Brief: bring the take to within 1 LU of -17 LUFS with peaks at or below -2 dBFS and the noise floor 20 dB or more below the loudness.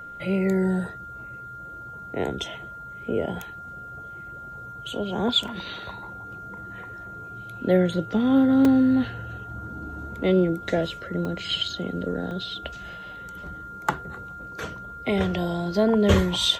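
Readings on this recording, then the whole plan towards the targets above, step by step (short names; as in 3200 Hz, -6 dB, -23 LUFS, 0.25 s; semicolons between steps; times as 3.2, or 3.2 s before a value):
dropouts 4; longest dropout 2.0 ms; steady tone 1400 Hz; tone level -37 dBFS; loudness -25.0 LUFS; peak -5.0 dBFS; loudness target -17.0 LUFS
-> interpolate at 5.48/8.65/11.25/12.31, 2 ms; notch 1400 Hz, Q 30; gain +8 dB; limiter -2 dBFS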